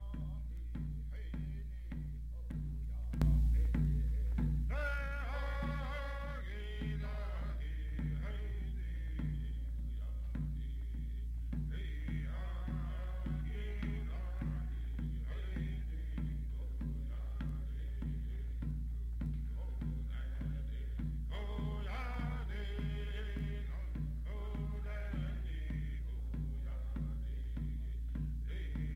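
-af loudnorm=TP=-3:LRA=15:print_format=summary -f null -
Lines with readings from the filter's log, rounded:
Input Integrated:    -41.4 LUFS
Input True Peak:     -18.5 dBTP
Input LRA:             5.3 LU
Input Threshold:     -51.4 LUFS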